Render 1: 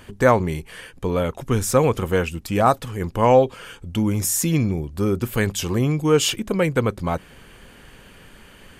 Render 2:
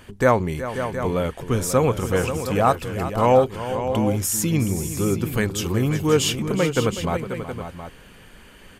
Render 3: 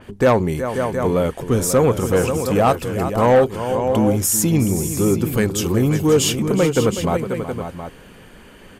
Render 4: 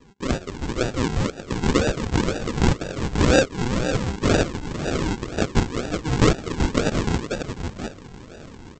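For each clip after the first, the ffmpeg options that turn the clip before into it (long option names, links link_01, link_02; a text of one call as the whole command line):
ffmpeg -i in.wav -af "aecho=1:1:371|536|720:0.237|0.316|0.266,volume=-1.5dB" out.wav
ffmpeg -i in.wav -af "equalizer=frequency=350:width=0.33:gain=6.5,asoftclip=type=tanh:threshold=-7dB,adynamicequalizer=threshold=0.01:dfrequency=4800:dqfactor=0.7:tfrequency=4800:tqfactor=0.7:attack=5:release=100:ratio=0.375:range=3:mode=boostabove:tftype=highshelf" out.wav
ffmpeg -i in.wav -af "highpass=1200,dynaudnorm=framelen=280:gausssize=3:maxgain=10dB,aresample=16000,acrusher=samples=21:mix=1:aa=0.000001:lfo=1:lforange=12.6:lforate=2,aresample=44100" out.wav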